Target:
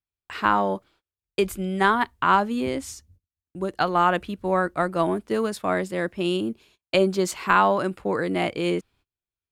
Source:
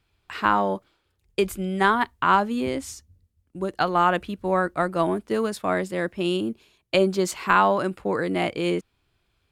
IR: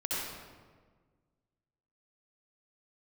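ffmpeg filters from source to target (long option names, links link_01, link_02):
-af "agate=range=-27dB:threshold=-55dB:ratio=16:detection=peak"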